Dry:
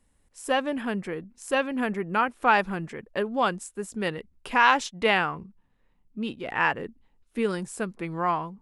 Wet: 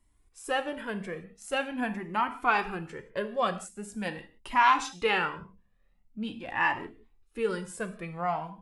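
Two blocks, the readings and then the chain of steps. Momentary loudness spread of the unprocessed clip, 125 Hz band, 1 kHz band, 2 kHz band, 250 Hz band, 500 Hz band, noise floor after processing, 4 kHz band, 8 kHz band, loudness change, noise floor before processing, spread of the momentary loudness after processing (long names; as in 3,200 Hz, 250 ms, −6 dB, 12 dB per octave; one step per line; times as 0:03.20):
14 LU, −5.0 dB, −2.5 dB, −4.0 dB, −6.0 dB, −4.5 dB, −67 dBFS, −4.0 dB, −3.5 dB, −3.5 dB, −67 dBFS, 15 LU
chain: reverb whose tail is shaped and stops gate 200 ms falling, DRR 8 dB
flanger whose copies keep moving one way rising 0.44 Hz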